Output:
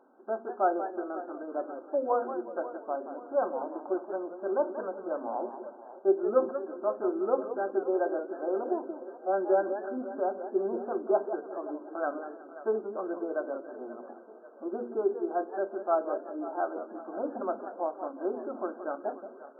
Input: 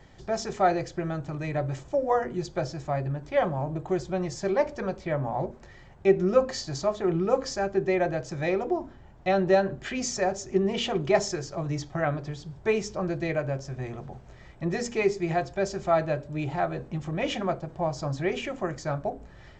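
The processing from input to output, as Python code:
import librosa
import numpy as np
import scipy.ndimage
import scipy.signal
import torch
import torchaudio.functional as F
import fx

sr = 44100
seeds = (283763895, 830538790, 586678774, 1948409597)

y = fx.brickwall_bandpass(x, sr, low_hz=220.0, high_hz=1600.0)
y = fx.echo_split(y, sr, split_hz=360.0, low_ms=165, high_ms=536, feedback_pct=52, wet_db=-15)
y = fx.echo_warbled(y, sr, ms=180, feedback_pct=31, rate_hz=2.8, cents=158, wet_db=-10.5)
y = F.gain(torch.from_numpy(y), -3.5).numpy()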